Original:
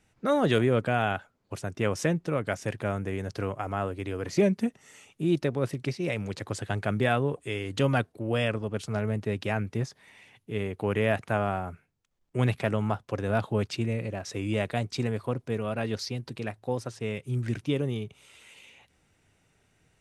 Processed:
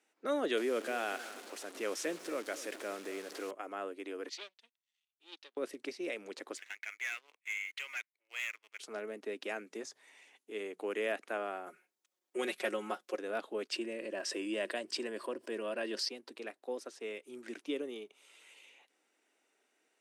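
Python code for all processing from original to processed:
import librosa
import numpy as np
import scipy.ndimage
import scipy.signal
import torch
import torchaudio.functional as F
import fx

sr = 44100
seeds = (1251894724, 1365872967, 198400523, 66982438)

y = fx.chain(x, sr, fx.delta_mod(bps=64000, step_db=-36.5),
    fx.transient(attack_db=-2, sustain_db=4),
    fx.echo_crushed(ms=238, feedback_pct=35, bits=7, wet_db=-14.0), at=(0.57, 3.51))
y = fx.chain(y, sr, fx.leveller(passes=3),
    fx.bandpass_q(hz=3500.0, q=2.8),
    fx.upward_expand(threshold_db=-51.0, expansion=2.5), at=(4.29, 5.57))
y = fx.chain(y, sr, fx.ladder_bandpass(hz=2300.0, resonance_pct=75),
    fx.leveller(passes=3), at=(6.57, 8.8))
y = fx.chain(y, sr, fx.peak_eq(hz=7100.0, db=7.0, octaves=0.73),
    fx.hum_notches(base_hz=60, count=3), at=(9.49, 11.12))
y = fx.chain(y, sr, fx.high_shelf(hz=4100.0, db=7.0),
    fx.comb(ms=5.5, depth=0.87), at=(11.66, 13.18))
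y = fx.chain(y, sr, fx.ripple_eq(per_octave=1.3, db=7),
    fx.env_flatten(amount_pct=50), at=(13.72, 16.09))
y = scipy.signal.sosfilt(scipy.signal.butter(6, 280.0, 'highpass', fs=sr, output='sos'), y)
y = fx.dynamic_eq(y, sr, hz=880.0, q=1.8, threshold_db=-45.0, ratio=4.0, max_db=-6)
y = F.gain(torch.from_numpy(y), -6.5).numpy()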